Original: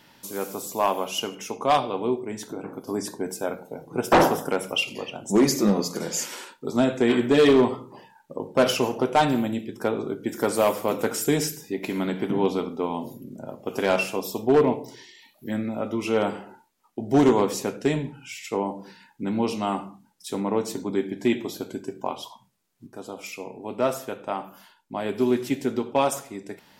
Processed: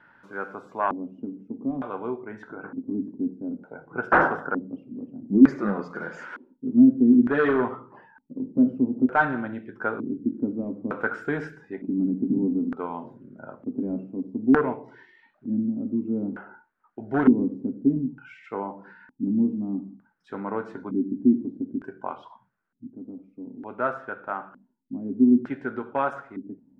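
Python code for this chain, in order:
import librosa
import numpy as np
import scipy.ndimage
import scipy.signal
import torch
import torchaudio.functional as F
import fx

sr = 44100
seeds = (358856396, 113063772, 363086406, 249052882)

y = fx.filter_lfo_lowpass(x, sr, shape='square', hz=0.55, low_hz=260.0, high_hz=1500.0, q=6.6)
y = fx.spec_box(y, sr, start_s=4.47, length_s=0.21, low_hz=1800.0, high_hz=11000.0, gain_db=-11)
y = y * librosa.db_to_amplitude(-6.5)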